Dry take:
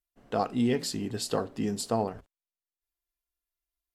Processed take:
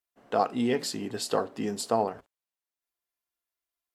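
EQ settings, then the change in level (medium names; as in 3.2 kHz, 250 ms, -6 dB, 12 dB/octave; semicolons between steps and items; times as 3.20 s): high-pass 230 Hz 6 dB/octave; peaking EQ 890 Hz +4.5 dB 2.6 oct; 0.0 dB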